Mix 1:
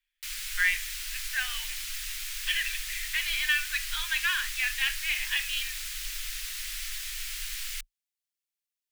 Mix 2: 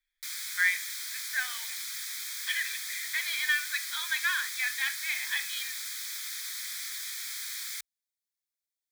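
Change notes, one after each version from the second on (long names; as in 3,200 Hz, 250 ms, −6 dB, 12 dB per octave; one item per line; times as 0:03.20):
background: add high-pass filter 120 Hz 24 dB per octave
master: add Butterworth band-reject 2,800 Hz, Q 3.4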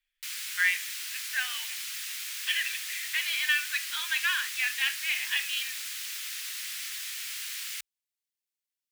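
master: remove Butterworth band-reject 2,800 Hz, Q 3.4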